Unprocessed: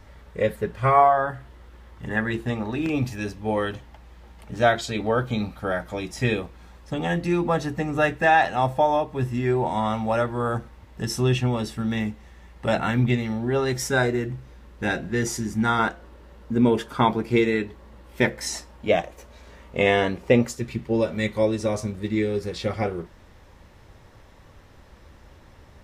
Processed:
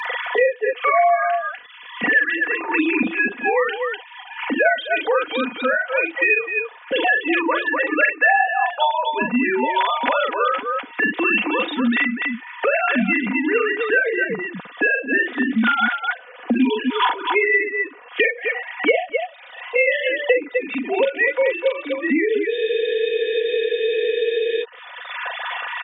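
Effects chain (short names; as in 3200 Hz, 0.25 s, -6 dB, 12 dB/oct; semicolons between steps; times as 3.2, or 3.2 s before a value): sine-wave speech; tilt shelf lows -9 dB, about 1400 Hz; comb 4.1 ms, depth 65%; on a send: tapped delay 42/249 ms -3.5/-8 dB; on the sum: spectral freeze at 22.52, 2.11 s; three-band squash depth 100%; gain +6 dB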